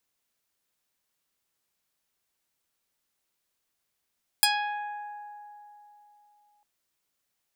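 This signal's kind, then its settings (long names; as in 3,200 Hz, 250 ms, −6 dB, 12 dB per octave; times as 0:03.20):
Karplus-Strong string G#5, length 2.20 s, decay 3.35 s, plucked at 0.42, medium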